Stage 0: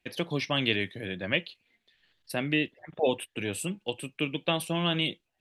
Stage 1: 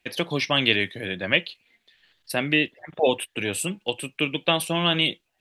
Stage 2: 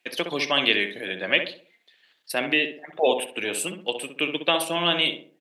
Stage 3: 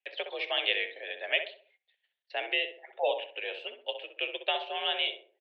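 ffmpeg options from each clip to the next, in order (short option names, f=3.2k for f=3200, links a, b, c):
-af "lowshelf=f=430:g=-5.5,volume=7.5dB"
-filter_complex "[0:a]highpass=300,asplit=2[a][b];[b]adelay=64,lowpass=f=1.4k:p=1,volume=-6dB,asplit=2[c][d];[d]adelay=64,lowpass=f=1.4k:p=1,volume=0.43,asplit=2[e][f];[f]adelay=64,lowpass=f=1.4k:p=1,volume=0.43,asplit=2[g][h];[h]adelay=64,lowpass=f=1.4k:p=1,volume=0.43,asplit=2[i][j];[j]adelay=64,lowpass=f=1.4k:p=1,volume=0.43[k];[a][c][e][g][i][k]amix=inputs=6:normalize=0"
-af "equalizer=f=1.1k:w=2.6:g=-11,highpass=f=400:t=q:w=0.5412,highpass=f=400:t=q:w=1.307,lowpass=f=3.5k:t=q:w=0.5176,lowpass=f=3.5k:t=q:w=0.7071,lowpass=f=3.5k:t=q:w=1.932,afreqshift=58,agate=range=-13dB:threshold=-59dB:ratio=16:detection=peak,volume=-6dB"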